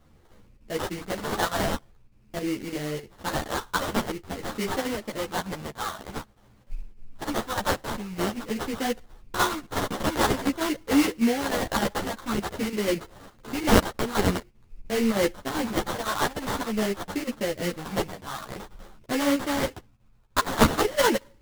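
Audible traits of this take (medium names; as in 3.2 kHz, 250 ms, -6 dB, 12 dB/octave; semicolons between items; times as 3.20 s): phasing stages 2, 0.48 Hz, lowest notch 350–2300 Hz; aliases and images of a low sample rate 2.5 kHz, jitter 20%; chopped level 3.3 Hz, depth 60%, duty 85%; a shimmering, thickened sound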